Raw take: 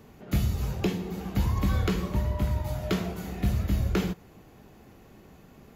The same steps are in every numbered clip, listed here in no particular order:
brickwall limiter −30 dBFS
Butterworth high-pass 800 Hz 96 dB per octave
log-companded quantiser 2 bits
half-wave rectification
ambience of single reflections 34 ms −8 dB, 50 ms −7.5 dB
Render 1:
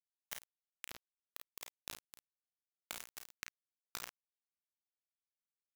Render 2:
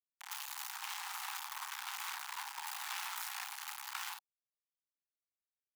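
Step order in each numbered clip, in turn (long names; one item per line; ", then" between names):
half-wave rectification, then brickwall limiter, then Butterworth high-pass, then log-companded quantiser, then ambience of single reflections
log-companded quantiser, then brickwall limiter, then ambience of single reflections, then half-wave rectification, then Butterworth high-pass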